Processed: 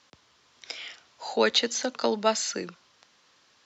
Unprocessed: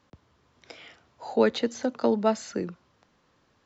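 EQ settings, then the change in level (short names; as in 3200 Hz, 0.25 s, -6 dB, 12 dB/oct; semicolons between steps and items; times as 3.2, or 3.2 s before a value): LPF 5200 Hz 12 dB/oct; tilt +3.5 dB/oct; high shelf 4000 Hz +9 dB; +1.5 dB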